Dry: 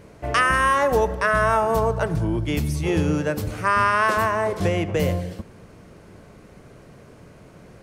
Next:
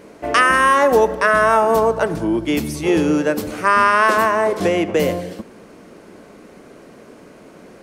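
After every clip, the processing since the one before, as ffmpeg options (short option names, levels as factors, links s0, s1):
-af "lowshelf=f=170:t=q:w=1.5:g=-12,volume=1.78"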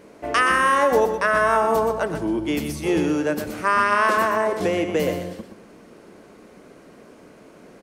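-af "aecho=1:1:123:0.398,volume=0.562"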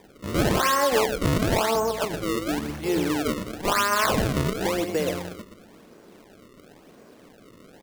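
-af "acrusher=samples=31:mix=1:aa=0.000001:lfo=1:lforange=49.6:lforate=0.96,volume=0.668"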